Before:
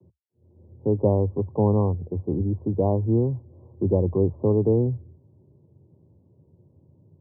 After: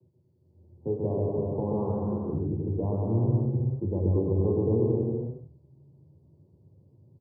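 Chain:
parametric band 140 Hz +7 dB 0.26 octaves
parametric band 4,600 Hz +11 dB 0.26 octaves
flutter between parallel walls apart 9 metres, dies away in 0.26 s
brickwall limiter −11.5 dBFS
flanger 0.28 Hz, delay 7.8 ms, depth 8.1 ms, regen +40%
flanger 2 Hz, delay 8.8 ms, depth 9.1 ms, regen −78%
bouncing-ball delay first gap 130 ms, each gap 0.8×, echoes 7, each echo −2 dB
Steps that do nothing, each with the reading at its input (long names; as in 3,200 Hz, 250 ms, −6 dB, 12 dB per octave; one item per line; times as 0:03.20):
parametric band 4,600 Hz: nothing at its input above 850 Hz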